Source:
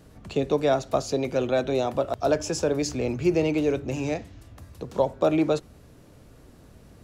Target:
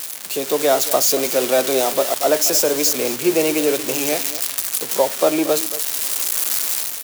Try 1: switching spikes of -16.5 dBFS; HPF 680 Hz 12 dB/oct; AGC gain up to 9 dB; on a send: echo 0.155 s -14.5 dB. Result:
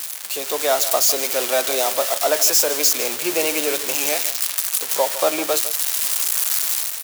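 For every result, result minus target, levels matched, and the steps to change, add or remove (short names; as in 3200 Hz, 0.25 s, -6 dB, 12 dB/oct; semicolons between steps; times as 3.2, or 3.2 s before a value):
250 Hz band -8.5 dB; echo 74 ms early
change: HPF 330 Hz 12 dB/oct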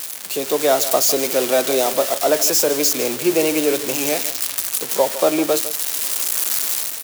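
echo 74 ms early
change: echo 0.229 s -14.5 dB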